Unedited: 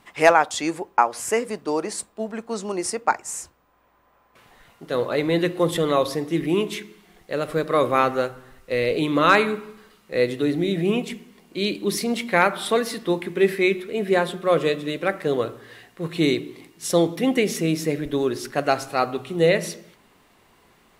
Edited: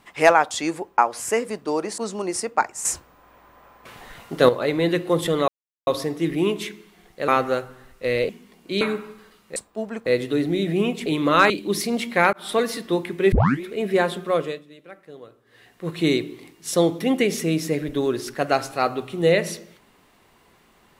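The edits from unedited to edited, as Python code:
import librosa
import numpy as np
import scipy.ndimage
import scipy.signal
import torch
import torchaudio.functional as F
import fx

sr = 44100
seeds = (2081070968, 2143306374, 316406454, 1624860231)

y = fx.edit(x, sr, fx.move(start_s=1.98, length_s=0.5, to_s=10.15),
    fx.clip_gain(start_s=3.35, length_s=1.64, db=10.0),
    fx.insert_silence(at_s=5.98, length_s=0.39),
    fx.cut(start_s=7.39, length_s=0.56),
    fx.swap(start_s=8.96, length_s=0.44, other_s=11.15, other_length_s=0.52),
    fx.fade_in_span(start_s=12.5, length_s=0.31, curve='qsin'),
    fx.tape_start(start_s=13.49, length_s=0.3),
    fx.fade_down_up(start_s=14.4, length_s=1.63, db=-19.5, fade_s=0.41), tone=tone)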